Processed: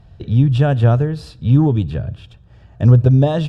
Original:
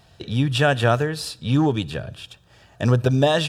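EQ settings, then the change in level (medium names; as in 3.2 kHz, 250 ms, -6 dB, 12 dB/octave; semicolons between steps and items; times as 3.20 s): RIAA curve playback; dynamic bell 1.9 kHz, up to -5 dB, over -35 dBFS, Q 1.2; -2.0 dB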